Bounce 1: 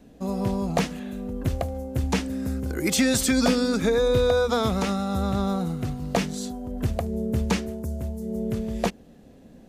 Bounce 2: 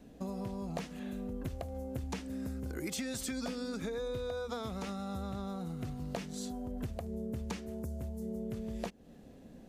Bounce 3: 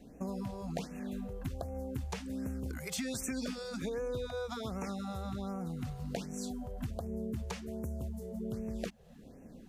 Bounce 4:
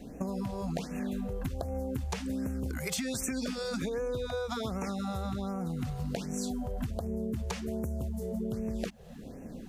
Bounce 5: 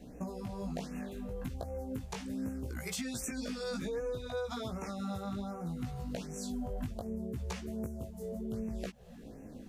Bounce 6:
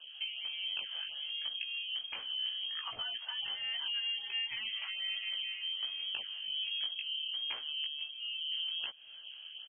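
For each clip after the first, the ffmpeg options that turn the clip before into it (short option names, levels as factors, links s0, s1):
-af "acompressor=threshold=0.0251:ratio=6,volume=0.631"
-af "afftfilt=real='re*(1-between(b*sr/1024,250*pow(4000/250,0.5+0.5*sin(2*PI*1.3*pts/sr))/1.41,250*pow(4000/250,0.5+0.5*sin(2*PI*1.3*pts/sr))*1.41))':imag='im*(1-between(b*sr/1024,250*pow(4000/250,0.5+0.5*sin(2*PI*1.3*pts/sr))/1.41,250*pow(4000/250,0.5+0.5*sin(2*PI*1.3*pts/sr))*1.41))':win_size=1024:overlap=0.75,volume=1.12"
-af "acompressor=threshold=0.0112:ratio=6,volume=2.66"
-af "flanger=delay=16:depth=4.2:speed=0.67,volume=0.841"
-af "lowpass=f=2800:t=q:w=0.5098,lowpass=f=2800:t=q:w=0.6013,lowpass=f=2800:t=q:w=0.9,lowpass=f=2800:t=q:w=2.563,afreqshift=-3300,aecho=1:1:482:0.0631"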